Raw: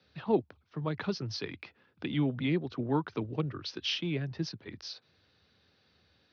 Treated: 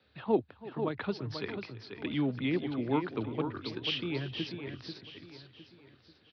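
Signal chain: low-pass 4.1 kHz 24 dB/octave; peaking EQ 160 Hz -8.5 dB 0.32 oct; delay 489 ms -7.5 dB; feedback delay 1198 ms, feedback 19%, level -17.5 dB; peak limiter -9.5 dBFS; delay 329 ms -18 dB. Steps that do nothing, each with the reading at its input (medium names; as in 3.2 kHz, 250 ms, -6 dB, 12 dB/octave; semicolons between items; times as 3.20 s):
peak limiter -9.5 dBFS: peak at its input -16.0 dBFS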